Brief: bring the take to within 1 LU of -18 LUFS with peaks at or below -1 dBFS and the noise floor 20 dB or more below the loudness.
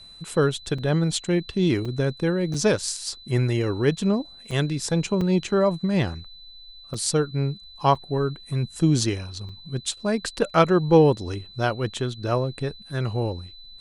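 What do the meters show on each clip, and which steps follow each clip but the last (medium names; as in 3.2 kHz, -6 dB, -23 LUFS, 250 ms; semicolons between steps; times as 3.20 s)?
dropouts 8; longest dropout 4.4 ms; steady tone 4 kHz; tone level -44 dBFS; loudness -24.0 LUFS; peak level -5.0 dBFS; loudness target -18.0 LUFS
-> interpolate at 0.78/1.85/2.54/4.51/5.21/6.94/7.95/9.49 s, 4.4 ms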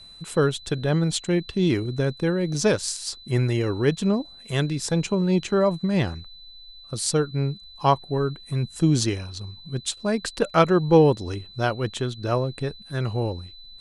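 dropouts 0; steady tone 4 kHz; tone level -44 dBFS
-> band-stop 4 kHz, Q 30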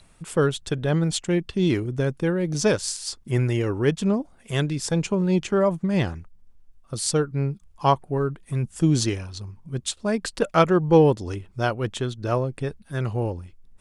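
steady tone not found; loudness -24.0 LUFS; peak level -5.0 dBFS; loudness target -18.0 LUFS
-> trim +6 dB; peak limiter -1 dBFS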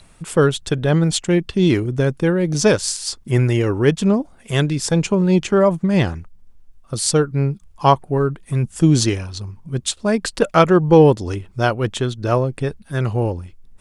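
loudness -18.0 LUFS; peak level -1.0 dBFS; noise floor -48 dBFS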